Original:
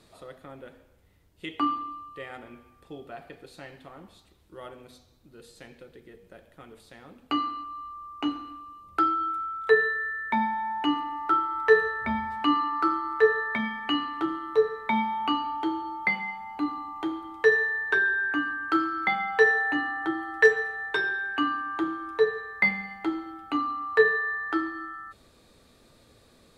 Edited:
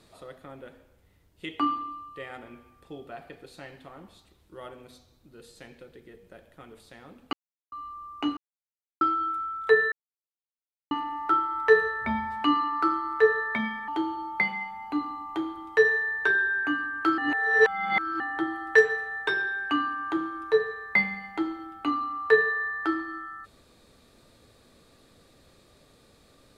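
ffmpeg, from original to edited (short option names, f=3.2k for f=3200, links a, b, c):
-filter_complex "[0:a]asplit=10[a][b][c][d][e][f][g][h][i][j];[a]atrim=end=7.33,asetpts=PTS-STARTPTS,afade=t=out:st=7.326:d=0.004:c=hsin[k];[b]atrim=start=7.33:end=7.72,asetpts=PTS-STARTPTS,volume=0[l];[c]atrim=start=7.72:end=8.37,asetpts=PTS-STARTPTS,afade=t=in:d=0.004:c=hsin,afade=t=out:st=0.646:d=0.004:c=hsin[m];[d]atrim=start=8.37:end=9.01,asetpts=PTS-STARTPTS,volume=0[n];[e]atrim=start=9.01:end=9.92,asetpts=PTS-STARTPTS,afade=t=in:d=0.004:c=hsin,afade=t=out:st=0.906:d=0.004:c=hsin[o];[f]atrim=start=9.92:end=10.91,asetpts=PTS-STARTPTS,volume=0[p];[g]atrim=start=10.91:end=13.882,asetpts=PTS-STARTPTS,afade=t=in:d=0.004:c=hsin[q];[h]atrim=start=15.548:end=18.852[r];[i]atrim=start=18.848:end=19.872,asetpts=PTS-STARTPTS,areverse[s];[j]atrim=start=19.868[t];[k][l][m][n][o][p][q]concat=n=7:v=0:a=1[u];[u][r]acrossfade=d=0.004:c1=hsin:c2=hsin[v];[v][s]acrossfade=d=0.004:c1=hsin:c2=hsin[w];[w][t]acrossfade=d=0.004:c1=hsin:c2=hsin"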